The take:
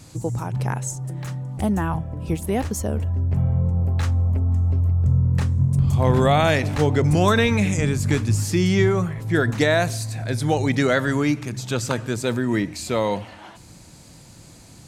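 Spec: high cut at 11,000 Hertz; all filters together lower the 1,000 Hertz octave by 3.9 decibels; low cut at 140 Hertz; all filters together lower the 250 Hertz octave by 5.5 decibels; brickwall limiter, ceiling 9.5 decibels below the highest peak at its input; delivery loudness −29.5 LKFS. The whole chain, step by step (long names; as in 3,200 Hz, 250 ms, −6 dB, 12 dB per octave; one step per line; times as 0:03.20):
high-pass filter 140 Hz
low-pass filter 11,000 Hz
parametric band 250 Hz −6.5 dB
parametric band 1,000 Hz −5 dB
level −1.5 dB
brickwall limiter −18 dBFS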